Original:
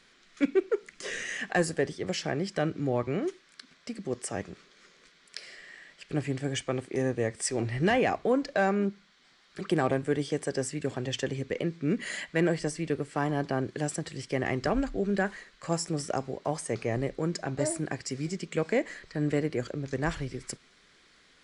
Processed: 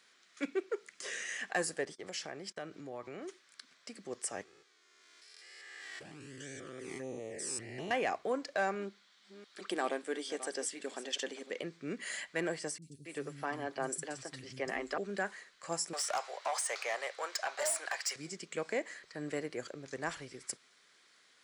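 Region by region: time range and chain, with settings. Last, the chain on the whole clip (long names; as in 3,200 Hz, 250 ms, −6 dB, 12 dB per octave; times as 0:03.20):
0:01.85–0:03.29: noise gate −44 dBFS, range −23 dB + downward compressor 3 to 1, threshold −31 dBFS
0:04.43–0:07.91: spectrum averaged block by block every 200 ms + flanger swept by the level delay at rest 3.1 ms, full sweep at −27.5 dBFS + background raised ahead of every attack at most 20 dB per second
0:08.75–0:11.63: delay that plays each chunk backwards 347 ms, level −13.5 dB + linear-phase brick-wall high-pass 180 Hz + parametric band 3,600 Hz +4.5 dB 0.62 octaves
0:12.78–0:14.98: comb filter 7.5 ms, depth 33% + three-band delay without the direct sound lows, highs, mids 40/270 ms, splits 220/5,400 Hz
0:15.93–0:18.16: high-pass filter 600 Hz 24 dB per octave + mid-hump overdrive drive 18 dB, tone 5,100 Hz, clips at −19.5 dBFS
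whole clip: high-pass filter 1,300 Hz 6 dB per octave; parametric band 2,900 Hz −6 dB 2.5 octaves; level +1.5 dB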